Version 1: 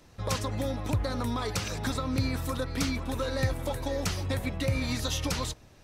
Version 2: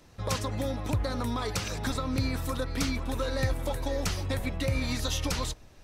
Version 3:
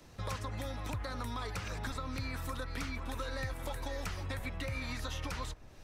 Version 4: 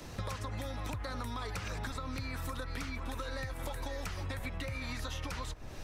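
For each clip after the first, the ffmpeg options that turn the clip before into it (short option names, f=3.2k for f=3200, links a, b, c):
-af "asubboost=boost=2.5:cutoff=57"
-filter_complex "[0:a]acrossover=split=100|990|2200[a][b][c][d];[a]acompressor=threshold=-40dB:ratio=4[e];[b]acompressor=threshold=-45dB:ratio=4[f];[c]acompressor=threshold=-42dB:ratio=4[g];[d]acompressor=threshold=-50dB:ratio=4[h];[e][f][g][h]amix=inputs=4:normalize=0"
-af "acompressor=threshold=-45dB:ratio=10,volume=10dB"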